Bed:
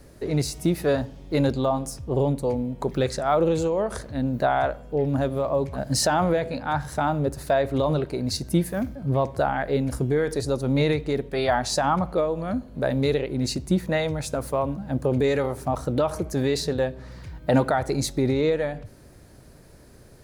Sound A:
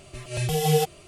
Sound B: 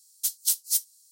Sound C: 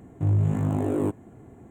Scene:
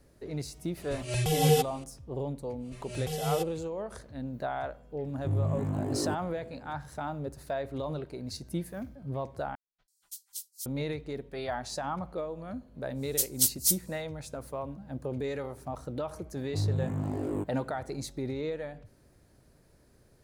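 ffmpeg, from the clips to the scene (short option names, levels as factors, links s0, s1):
-filter_complex "[1:a]asplit=2[s0][s1];[3:a]asplit=2[s2][s3];[2:a]asplit=2[s4][s5];[0:a]volume=0.251[s6];[s4]acrossover=split=1800[s7][s8];[s8]adelay=330[s9];[s7][s9]amix=inputs=2:normalize=0[s10];[s6]asplit=2[s11][s12];[s11]atrim=end=9.554[s13];[s10]atrim=end=1.11,asetpts=PTS-STARTPTS,volume=0.15[s14];[s12]atrim=start=10.656[s15];[s0]atrim=end=1.07,asetpts=PTS-STARTPTS,volume=0.794,afade=t=in:d=0.004:c=hsin,afade=t=out:st=1.066:d=0.004:c=hsin,adelay=770[s16];[s1]atrim=end=1.07,asetpts=PTS-STARTPTS,volume=0.316,afade=t=in:d=0.1,afade=t=out:st=0.97:d=0.1,adelay=2580[s17];[s2]atrim=end=1.7,asetpts=PTS-STARTPTS,volume=0.447,afade=t=in:d=0.004:c=hsin,afade=t=out:st=1.696:d=0.004:c=hsin,adelay=5040[s18];[s5]atrim=end=1.11,asetpts=PTS-STARTPTS,volume=0.944,afade=t=in:d=0.1,afade=t=out:st=1.01:d=0.1,adelay=12940[s19];[s3]atrim=end=1.7,asetpts=PTS-STARTPTS,volume=0.422,afade=t=in:d=0.004:c=hsin,afade=t=out:st=1.696:d=0.004:c=hsin,adelay=16330[s20];[s13][s14]acrossfade=d=0.004:c1=hsin:c2=hsin[s21];[s21][s15]acrossfade=d=0.004:c1=hsin:c2=hsin[s22];[s22][s16][s17][s18][s19][s20]amix=inputs=6:normalize=0"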